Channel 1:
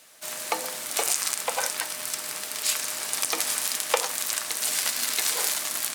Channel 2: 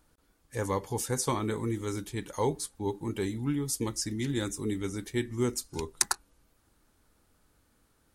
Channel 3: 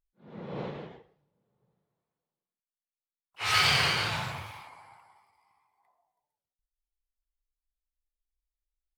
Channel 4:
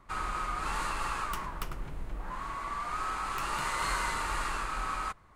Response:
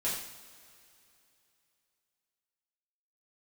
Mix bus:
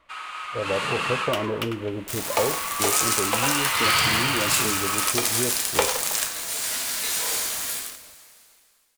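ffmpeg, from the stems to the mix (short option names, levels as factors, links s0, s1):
-filter_complex "[0:a]acrusher=bits=4:mix=0:aa=0.000001,adelay=1850,volume=0.447,asplit=3[s0][s1][s2];[s1]volume=0.473[s3];[s2]volume=0.316[s4];[1:a]acompressor=threshold=0.02:ratio=2.5,lowpass=f=620:t=q:w=7.7,volume=0.708,asplit=2[s5][s6];[2:a]adelay=300,volume=0.316,asplit=2[s7][s8];[s8]volume=0.631[s9];[3:a]highpass=720,equalizer=f=2900:t=o:w=1:g=13,volume=0.708[s10];[s6]apad=whole_len=343730[s11];[s0][s11]sidechaingate=range=0.0224:threshold=0.00112:ratio=16:detection=peak[s12];[4:a]atrim=start_sample=2205[s13];[s3][s9]amix=inputs=2:normalize=0[s14];[s14][s13]afir=irnorm=-1:irlink=0[s15];[s4]aecho=0:1:168:1[s16];[s12][s5][s7][s10][s15][s16]amix=inputs=6:normalize=0,dynaudnorm=f=160:g=9:m=2.37"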